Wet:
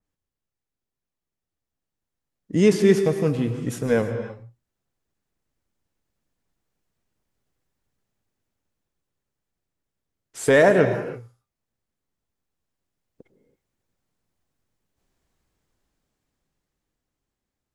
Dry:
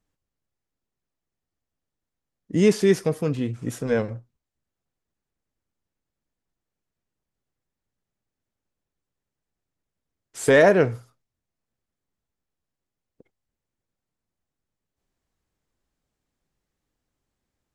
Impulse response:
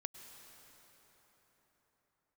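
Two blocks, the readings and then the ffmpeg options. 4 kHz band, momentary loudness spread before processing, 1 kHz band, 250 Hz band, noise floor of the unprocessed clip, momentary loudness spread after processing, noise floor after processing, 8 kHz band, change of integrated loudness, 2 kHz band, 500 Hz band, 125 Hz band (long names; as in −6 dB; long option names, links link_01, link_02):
0.0 dB, 15 LU, +0.5 dB, +1.5 dB, below −85 dBFS, 13 LU, below −85 dBFS, 0.0 dB, +0.5 dB, +0.5 dB, +1.0 dB, +2.0 dB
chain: -filter_complex "[0:a]dynaudnorm=framelen=380:gausssize=11:maxgain=10.5dB[link_01];[1:a]atrim=start_sample=2205,afade=type=out:start_time=0.39:duration=0.01,atrim=end_sample=17640[link_02];[link_01][link_02]afir=irnorm=-1:irlink=0,adynamicequalizer=threshold=0.0126:dfrequency=3100:dqfactor=0.7:tfrequency=3100:tqfactor=0.7:attack=5:release=100:ratio=0.375:range=2.5:mode=cutabove:tftype=highshelf"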